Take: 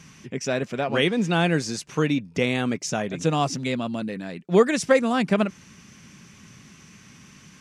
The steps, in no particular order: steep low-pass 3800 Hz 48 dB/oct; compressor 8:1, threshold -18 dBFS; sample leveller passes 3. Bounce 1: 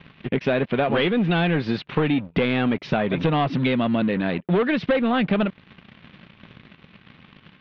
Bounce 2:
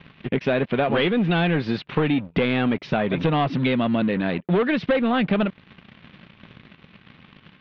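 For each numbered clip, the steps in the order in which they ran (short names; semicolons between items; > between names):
sample leveller > steep low-pass > compressor; sample leveller > compressor > steep low-pass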